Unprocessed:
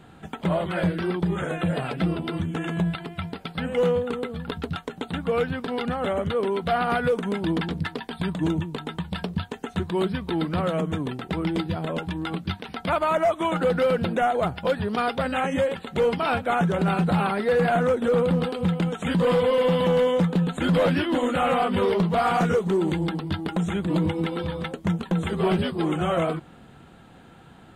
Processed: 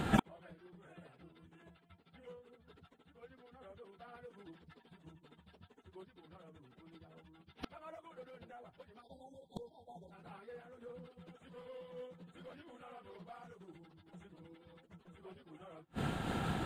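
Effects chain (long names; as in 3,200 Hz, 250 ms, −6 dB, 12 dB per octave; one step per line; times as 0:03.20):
time-frequency box erased 0:15.02–0:16.88, 990–3,200 Hz
dynamic equaliser 200 Hz, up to −5 dB, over −35 dBFS, Q 1.8
time stretch by phase vocoder 0.6×
gate with flip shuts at −31 dBFS, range −42 dB
amplitude modulation by smooth noise, depth 60%
level +18 dB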